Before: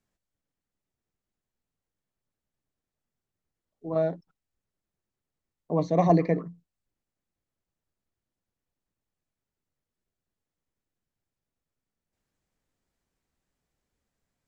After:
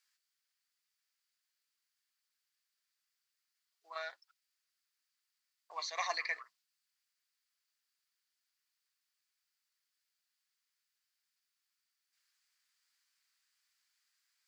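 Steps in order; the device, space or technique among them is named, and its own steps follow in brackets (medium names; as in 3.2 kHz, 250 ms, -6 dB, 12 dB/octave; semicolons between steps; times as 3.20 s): headphones lying on a table (high-pass 1.4 kHz 24 dB/octave; peaking EQ 4.7 kHz +8.5 dB 0.34 oct); trim +6 dB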